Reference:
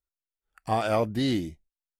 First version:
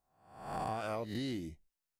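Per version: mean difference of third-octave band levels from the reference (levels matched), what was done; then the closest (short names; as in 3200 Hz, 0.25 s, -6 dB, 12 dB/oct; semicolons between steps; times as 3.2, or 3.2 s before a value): 7.0 dB: spectral swells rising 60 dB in 0.64 s; bell 3400 Hz -4 dB 0.27 oct; compressor 10:1, threshold -37 dBFS, peak gain reduction 17.5 dB; gain +2 dB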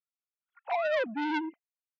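15.0 dB: sine-wave speech; HPF 190 Hz 12 dB/oct; core saturation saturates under 1500 Hz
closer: first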